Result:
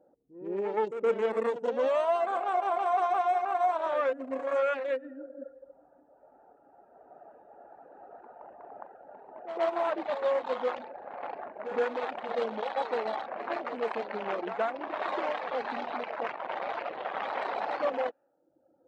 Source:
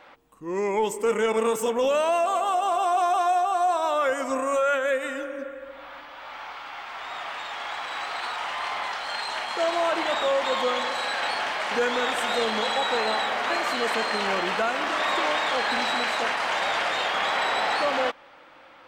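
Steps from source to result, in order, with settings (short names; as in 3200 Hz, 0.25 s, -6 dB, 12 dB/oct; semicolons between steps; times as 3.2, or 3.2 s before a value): Wiener smoothing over 41 samples; reverb removal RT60 0.97 s; low-pass opened by the level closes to 530 Hz, open at -25.5 dBFS; band-pass 770 Hz, Q 0.55; on a send: reverse echo 0.119 s -11 dB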